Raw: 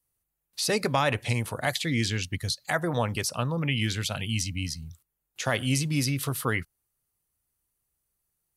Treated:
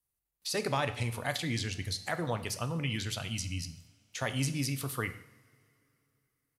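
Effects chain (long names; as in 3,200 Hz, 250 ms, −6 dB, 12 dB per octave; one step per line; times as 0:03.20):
tempo change 1.3×
coupled-rooms reverb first 0.69 s, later 3.1 s, from −21 dB, DRR 8.5 dB
level −6.5 dB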